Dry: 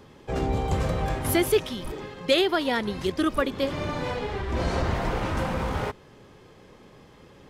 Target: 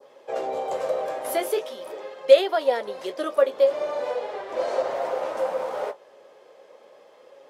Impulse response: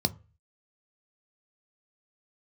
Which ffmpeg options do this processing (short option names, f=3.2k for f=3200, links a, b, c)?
-af "adynamicequalizer=threshold=0.0112:dfrequency=2500:dqfactor=0.79:tfrequency=2500:tqfactor=0.79:attack=5:release=100:ratio=0.375:range=2.5:mode=cutabove:tftype=bell,flanger=delay=7.2:depth=9.2:regen=-44:speed=0.4:shape=sinusoidal,highpass=f=560:t=q:w=4.9"